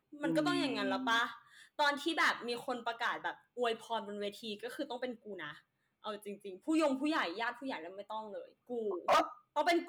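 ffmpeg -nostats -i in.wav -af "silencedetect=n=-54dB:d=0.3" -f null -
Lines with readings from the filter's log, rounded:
silence_start: 5.59
silence_end: 6.04 | silence_duration: 0.45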